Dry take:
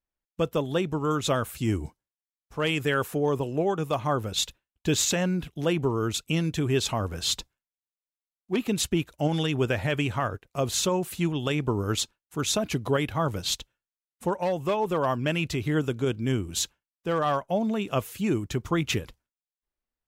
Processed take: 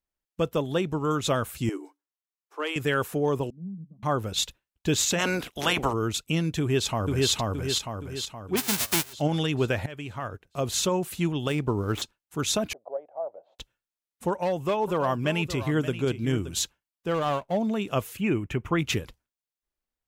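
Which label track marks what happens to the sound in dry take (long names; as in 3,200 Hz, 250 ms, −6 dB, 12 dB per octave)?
1.690000	2.760000	Chebyshev high-pass with heavy ripple 280 Hz, ripple 6 dB
3.500000	4.030000	flat-topped band-pass 190 Hz, Q 4.8
5.180000	5.920000	ceiling on every frequency bin ceiling under each frame's peak by 24 dB
6.600000	7.310000	delay throw 470 ms, feedback 50%, level −0.5 dB
8.560000	9.120000	spectral envelope flattened exponent 0.1
9.860000	10.790000	fade in linear, from −16 dB
11.480000	12.020000	running median over 9 samples
12.730000	13.590000	flat-topped band-pass 640 Hz, Q 3.1
14.300000	16.550000	single-tap delay 574 ms −12.5 dB
17.140000	17.570000	running median over 25 samples
18.170000	18.790000	high shelf with overshoot 3,300 Hz −8 dB, Q 3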